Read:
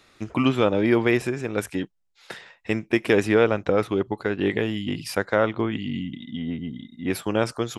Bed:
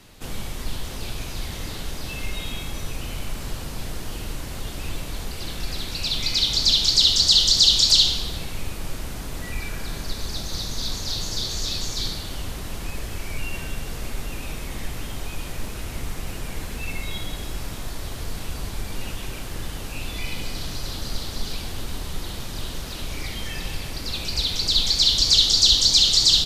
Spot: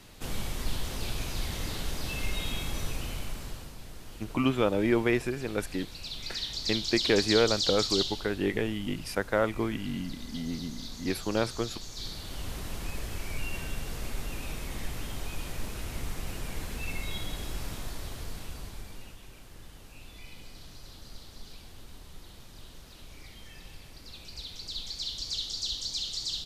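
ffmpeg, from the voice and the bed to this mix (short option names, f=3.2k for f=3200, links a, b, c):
-filter_complex "[0:a]adelay=4000,volume=-5.5dB[a];[1:a]volume=6.5dB,afade=t=out:st=2.82:d=0.95:silence=0.266073,afade=t=in:st=11.91:d=0.65:silence=0.354813,afade=t=out:st=17.72:d=1.45:silence=0.237137[b];[a][b]amix=inputs=2:normalize=0"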